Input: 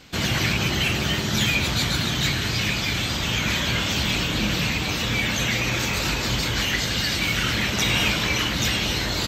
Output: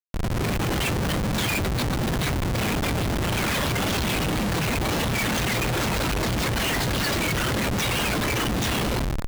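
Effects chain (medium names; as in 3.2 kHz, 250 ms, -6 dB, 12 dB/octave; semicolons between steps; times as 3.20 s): reverb removal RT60 1.7 s; level rider gain up to 14 dB; 1.61–3.37 s: distance through air 67 m; Schmitt trigger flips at -16 dBFS; trim -8 dB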